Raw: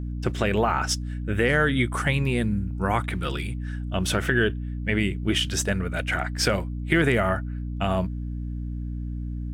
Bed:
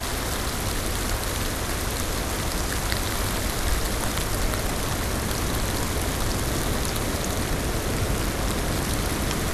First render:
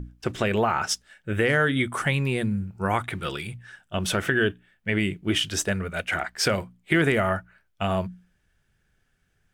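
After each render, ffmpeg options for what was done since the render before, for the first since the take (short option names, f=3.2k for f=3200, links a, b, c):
-af "bandreject=f=60:t=h:w=6,bandreject=f=120:t=h:w=6,bandreject=f=180:t=h:w=6,bandreject=f=240:t=h:w=6,bandreject=f=300:t=h:w=6"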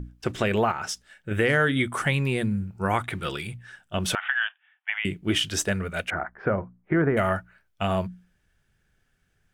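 -filter_complex "[0:a]asettb=1/sr,asplit=3[a][b][c];[a]atrim=end=0.714[d];[b]atrim=start=0.71:end=1.31,asetpts=PTS-STARTPTS,afade=t=in:d=0.004:c=qsin,afade=t=out:st=0.596:d=0.004:c=qsin,acompressor=threshold=-27dB:ratio=6:attack=3.2:release=140:knee=1:detection=peak[e];[c]atrim=start=1.306[f];[d][e]acrossfade=d=0.004:c1=hsin:c2=qsin[g];[g][f]acrossfade=d=0.004:c1=qsin:c2=hsin,asettb=1/sr,asplit=3[h][i][j];[h]atrim=end=4.154[k];[i]atrim=start=4.15:end=5.05,asetpts=PTS-STARTPTS,afade=t=in:d=0.004:c=qsin,afade=t=out:st=0.896:d=0.004:c=qsin,asuperpass=centerf=1600:order=20:qfactor=0.59[l];[j]atrim=start=5.046[m];[k][l]acrossfade=d=0.004:c1=hsin:c2=qsin[n];[n][m]acrossfade=d=0.004:c1=qsin:c2=hsin,asettb=1/sr,asplit=3[o][p][q];[o]atrim=end=6.104[r];[p]atrim=start=6.1:end=7.17,asetpts=PTS-STARTPTS,afade=t=in:d=0.004:c=qsin,afade=t=out:st=1.066:d=0.004:c=qsin,lowpass=f=1.5k:w=0.5412,lowpass=f=1.5k:w=1.3066[s];[q]atrim=start=7.166[t];[r][s]acrossfade=d=0.004:c1=hsin:c2=qsin[u];[u][t]acrossfade=d=0.004:c1=qsin:c2=hsin"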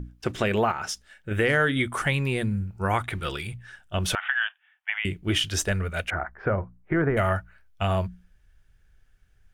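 -af "bandreject=f=7.9k:w=25,asubboost=boost=5:cutoff=78"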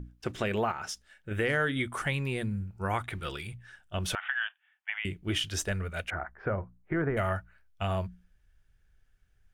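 -af "volume=-6dB"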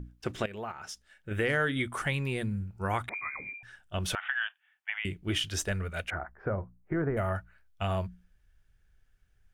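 -filter_complex "[0:a]asettb=1/sr,asplit=3[a][b][c];[a]atrim=end=3.094[d];[b]atrim=start=3.09:end=3.63,asetpts=PTS-STARTPTS,afade=t=in:d=0.004:c=qsin,afade=t=out:st=0.536:d=0.004:c=qsin,lowpass=f=2.1k:t=q:w=0.5098,lowpass=f=2.1k:t=q:w=0.6013,lowpass=f=2.1k:t=q:w=0.9,lowpass=f=2.1k:t=q:w=2.563,afreqshift=-2500[e];[c]atrim=start=3.626[f];[d][e]acrossfade=d=0.004:c1=hsin:c2=qsin[g];[g][f]acrossfade=d=0.004:c1=qsin:c2=hsin,asettb=1/sr,asplit=3[h][i][j];[h]atrim=end=6.184[k];[i]atrim=start=6.18:end=7.35,asetpts=PTS-STARTPTS,afade=t=in:d=0.004:c=qsin,afade=t=out:st=1.166:d=0.004:c=qsin,equalizer=f=3.8k:w=0.59:g=-10[l];[j]atrim=start=7.346[m];[k][l]acrossfade=d=0.004:c1=hsin:c2=qsin[n];[n][m]acrossfade=d=0.004:c1=qsin:c2=hsin,asplit=2[o][p];[o]atrim=end=0.46,asetpts=PTS-STARTPTS,afade=t=out:st=0.456:d=0.004:c=hsin:silence=0.177828[q];[p]atrim=start=0.46,asetpts=PTS-STARTPTS,afade=t=in:d=0.86:silence=0.177828[r];[q][r]concat=n=2:v=0:a=1"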